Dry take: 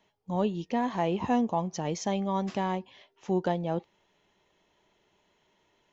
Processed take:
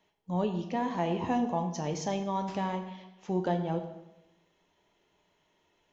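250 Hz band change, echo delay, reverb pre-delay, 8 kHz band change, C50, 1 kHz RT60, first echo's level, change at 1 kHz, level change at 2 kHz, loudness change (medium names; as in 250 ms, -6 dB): -2.0 dB, no echo, 6 ms, no reading, 9.0 dB, 0.95 s, no echo, -1.5 dB, -2.0 dB, -2.0 dB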